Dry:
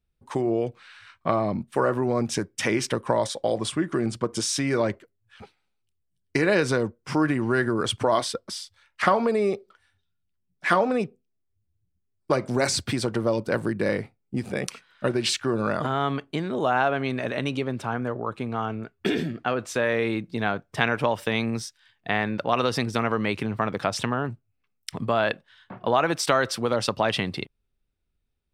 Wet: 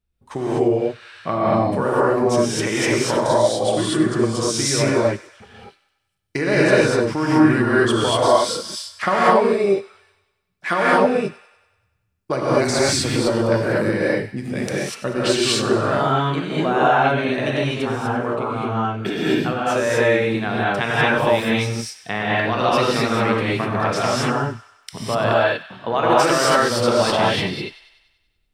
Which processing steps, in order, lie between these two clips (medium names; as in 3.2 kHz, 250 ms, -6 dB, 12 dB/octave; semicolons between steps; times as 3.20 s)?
on a send: feedback echo behind a high-pass 96 ms, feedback 57%, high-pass 1.5 kHz, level -14 dB; on the sum: gated-style reverb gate 270 ms rising, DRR -7 dB; trim -1 dB